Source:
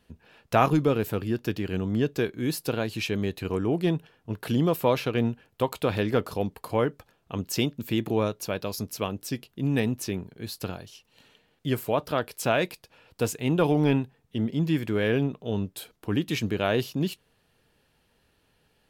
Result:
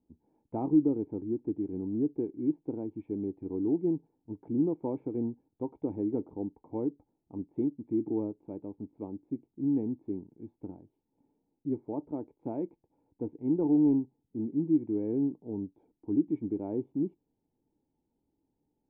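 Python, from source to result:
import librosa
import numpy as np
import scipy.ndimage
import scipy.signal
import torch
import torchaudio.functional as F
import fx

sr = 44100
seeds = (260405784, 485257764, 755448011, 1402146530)

y = fx.dynamic_eq(x, sr, hz=380.0, q=1.5, threshold_db=-34.0, ratio=4.0, max_db=4)
y = fx.formant_cascade(y, sr, vowel='u')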